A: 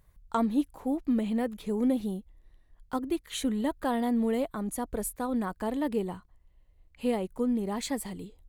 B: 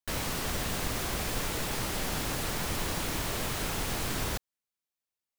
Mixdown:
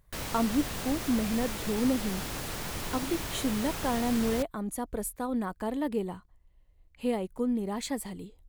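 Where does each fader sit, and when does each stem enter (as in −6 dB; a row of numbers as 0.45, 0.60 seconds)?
−1.0, −3.5 decibels; 0.00, 0.05 seconds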